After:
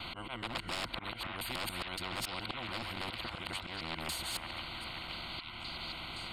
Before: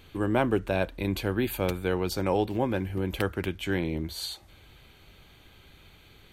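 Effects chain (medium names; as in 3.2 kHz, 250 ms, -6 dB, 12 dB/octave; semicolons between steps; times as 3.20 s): time reversed locally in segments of 141 ms; rippled EQ curve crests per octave 1.9, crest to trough 10 dB; slow attack 390 ms; wavefolder -25.5 dBFS; distance through air 110 m; static phaser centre 1.7 kHz, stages 6; repeats whose band climbs or falls 518 ms, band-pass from 1.4 kHz, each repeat 0.7 oct, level -6.5 dB; spectrum-flattening compressor 4:1; trim +4.5 dB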